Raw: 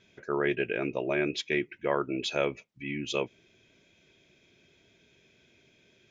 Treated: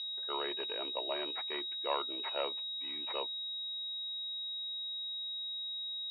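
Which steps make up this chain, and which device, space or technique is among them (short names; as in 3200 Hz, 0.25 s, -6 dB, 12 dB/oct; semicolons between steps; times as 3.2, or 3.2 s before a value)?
toy sound module (decimation joined by straight lines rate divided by 8×; pulse-width modulation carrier 3800 Hz; speaker cabinet 740–4300 Hz, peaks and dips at 940 Hz +5 dB, 1600 Hz -7 dB, 2800 Hz +9 dB); gain -2 dB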